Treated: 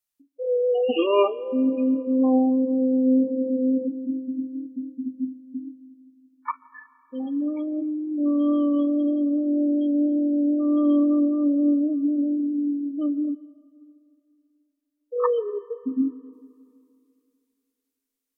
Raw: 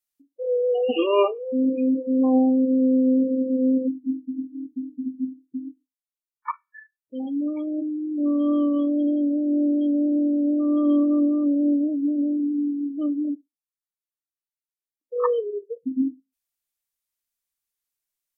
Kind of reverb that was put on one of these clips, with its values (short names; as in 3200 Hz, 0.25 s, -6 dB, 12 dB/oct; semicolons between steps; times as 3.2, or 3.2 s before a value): digital reverb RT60 2.6 s, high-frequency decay 0.6×, pre-delay 95 ms, DRR 19 dB